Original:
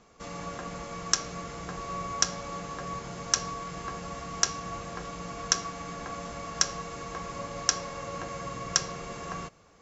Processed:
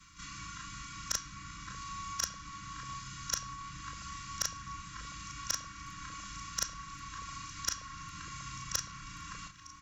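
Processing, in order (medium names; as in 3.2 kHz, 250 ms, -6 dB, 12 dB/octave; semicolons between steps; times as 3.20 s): short-time spectra conjugated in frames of 75 ms; comb 2.1 ms, depth 67%; reverse; upward compressor, threshold -49 dBFS; reverse; brick-wall FIR band-stop 320–1000 Hz; one-sided clip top -19.5 dBFS; repeats whose band climbs or falls 594 ms, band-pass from 330 Hz, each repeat 0.7 oct, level -9 dB; three bands compressed up and down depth 40%; trim -3.5 dB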